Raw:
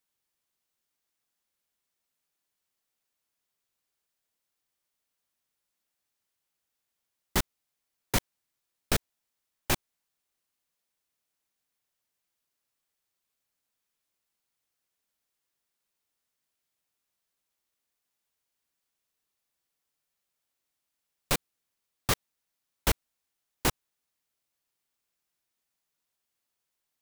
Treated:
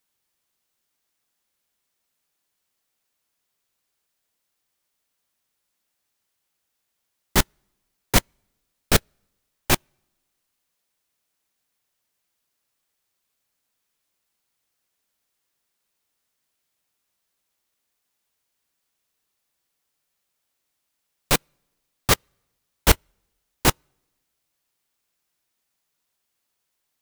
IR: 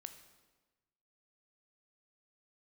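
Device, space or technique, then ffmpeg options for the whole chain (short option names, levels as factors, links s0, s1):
keyed gated reverb: -filter_complex "[0:a]asplit=3[s0][s1][s2];[1:a]atrim=start_sample=2205[s3];[s1][s3]afir=irnorm=-1:irlink=0[s4];[s2]apad=whole_len=1191565[s5];[s4][s5]sidechaingate=range=0.0251:threshold=0.0708:ratio=16:detection=peak,volume=1.58[s6];[s0][s6]amix=inputs=2:normalize=0,volume=2"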